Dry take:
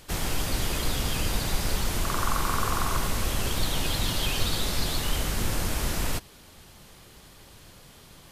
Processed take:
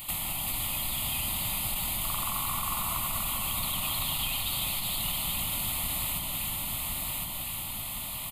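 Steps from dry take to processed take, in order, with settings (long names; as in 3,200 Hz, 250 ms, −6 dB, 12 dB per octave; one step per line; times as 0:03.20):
RIAA equalisation recording
phaser with its sweep stopped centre 1,600 Hz, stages 6
repeating echo 1,061 ms, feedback 29%, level −8.5 dB
downward compressor 4 to 1, threshold −38 dBFS, peak gain reduction 14.5 dB
bass and treble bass +8 dB, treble −3 dB
on a send: delay that swaps between a low-pass and a high-pass 193 ms, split 1,100 Hz, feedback 73%, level −2.5 dB
on the sum: saturating transformer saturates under 56 Hz
level +7.5 dB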